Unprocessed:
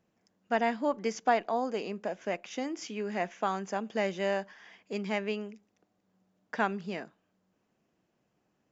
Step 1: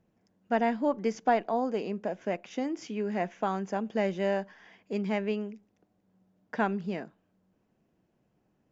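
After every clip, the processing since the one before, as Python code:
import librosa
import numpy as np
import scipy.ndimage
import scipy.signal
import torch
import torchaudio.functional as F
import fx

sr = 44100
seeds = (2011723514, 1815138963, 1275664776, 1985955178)

y = fx.tilt_eq(x, sr, slope=-2.0)
y = fx.notch(y, sr, hz=1200.0, q=19.0)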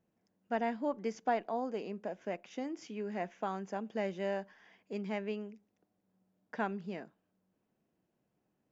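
y = fx.low_shelf(x, sr, hz=96.0, db=-8.0)
y = y * 10.0 ** (-6.5 / 20.0)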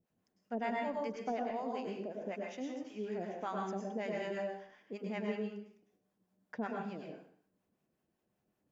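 y = fx.harmonic_tremolo(x, sr, hz=5.3, depth_pct=100, crossover_hz=600.0)
y = fx.rev_plate(y, sr, seeds[0], rt60_s=0.57, hf_ratio=0.95, predelay_ms=90, drr_db=-0.5)
y = y * 10.0 ** (1.0 / 20.0)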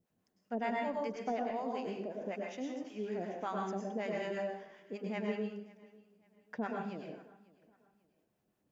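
y = fx.echo_feedback(x, sr, ms=544, feedback_pct=33, wet_db=-22.5)
y = y * 10.0 ** (1.0 / 20.0)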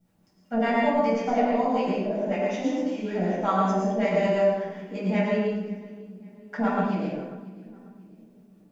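y = fx.echo_split(x, sr, split_hz=410.0, low_ms=527, high_ms=91, feedback_pct=52, wet_db=-16.0)
y = fx.room_shoebox(y, sr, seeds[1], volume_m3=560.0, walls='furnished', distance_m=7.5)
y = y * 10.0 ** (2.5 / 20.0)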